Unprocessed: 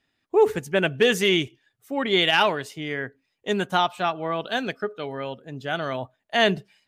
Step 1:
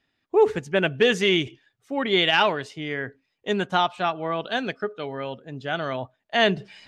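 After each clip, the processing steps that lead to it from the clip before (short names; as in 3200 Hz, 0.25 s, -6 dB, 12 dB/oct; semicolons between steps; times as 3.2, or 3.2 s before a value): LPF 6000 Hz 12 dB/oct; reverse; upward compressor, threshold -35 dBFS; reverse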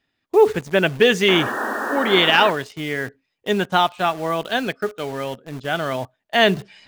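painted sound noise, 1.28–2.51, 210–1900 Hz -29 dBFS; in parallel at -4 dB: bit-crush 6-bit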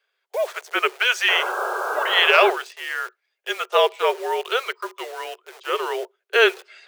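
frequency shift -240 Hz; Chebyshev high-pass 370 Hz, order 8; gain +1 dB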